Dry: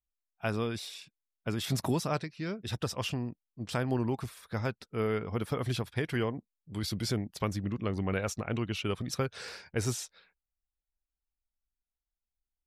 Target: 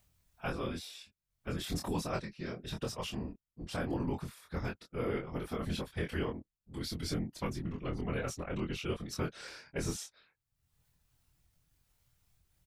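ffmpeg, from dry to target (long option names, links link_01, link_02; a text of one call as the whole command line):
ffmpeg -i in.wav -filter_complex "[0:a]acompressor=mode=upward:threshold=-47dB:ratio=2.5,afftfilt=real='hypot(re,im)*cos(2*PI*random(0))':imag='hypot(re,im)*sin(2*PI*random(1))':win_size=512:overlap=0.75,asplit=2[link_01][link_02];[link_02]adelay=24,volume=-3.5dB[link_03];[link_01][link_03]amix=inputs=2:normalize=0" out.wav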